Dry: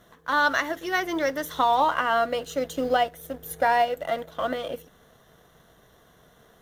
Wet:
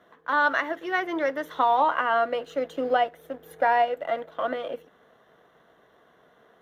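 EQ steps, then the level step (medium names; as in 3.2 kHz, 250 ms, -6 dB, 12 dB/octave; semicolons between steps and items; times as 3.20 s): high-pass 91 Hz 6 dB/octave; three-band isolator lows -15 dB, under 230 Hz, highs -17 dB, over 3.1 kHz; bass shelf 120 Hz +4.5 dB; 0.0 dB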